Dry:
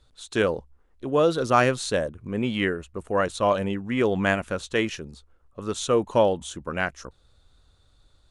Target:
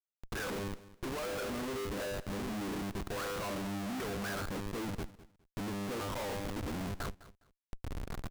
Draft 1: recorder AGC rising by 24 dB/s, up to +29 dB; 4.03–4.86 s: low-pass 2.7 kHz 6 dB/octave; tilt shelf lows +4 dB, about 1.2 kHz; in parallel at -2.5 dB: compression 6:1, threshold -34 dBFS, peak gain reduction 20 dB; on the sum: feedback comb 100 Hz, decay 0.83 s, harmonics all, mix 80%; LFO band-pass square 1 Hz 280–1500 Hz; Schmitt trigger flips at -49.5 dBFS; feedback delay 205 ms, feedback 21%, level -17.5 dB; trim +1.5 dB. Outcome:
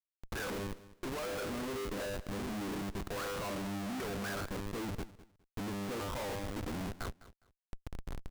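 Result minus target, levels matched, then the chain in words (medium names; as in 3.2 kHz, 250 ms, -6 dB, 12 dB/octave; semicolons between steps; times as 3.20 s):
compression: peak gain reduction +5 dB
recorder AGC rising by 24 dB/s, up to +29 dB; 4.03–4.86 s: low-pass 2.7 kHz 6 dB/octave; tilt shelf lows +4 dB, about 1.2 kHz; in parallel at -2.5 dB: compression 6:1, threshold -28 dBFS, peak gain reduction 15 dB; on the sum: feedback comb 100 Hz, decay 0.83 s, harmonics all, mix 80%; LFO band-pass square 1 Hz 280–1500 Hz; Schmitt trigger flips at -49.5 dBFS; feedback delay 205 ms, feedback 21%, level -17.5 dB; trim +1.5 dB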